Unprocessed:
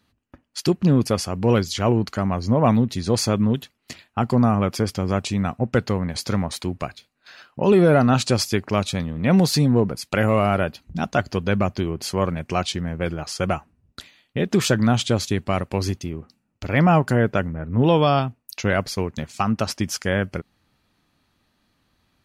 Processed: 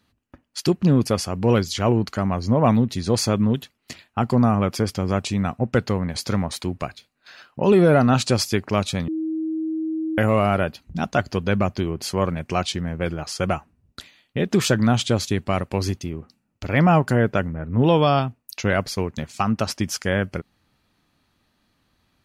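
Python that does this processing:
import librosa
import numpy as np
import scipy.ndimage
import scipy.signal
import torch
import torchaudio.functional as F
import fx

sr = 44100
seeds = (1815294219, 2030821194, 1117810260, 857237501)

y = fx.edit(x, sr, fx.bleep(start_s=9.08, length_s=1.1, hz=318.0, db=-22.5), tone=tone)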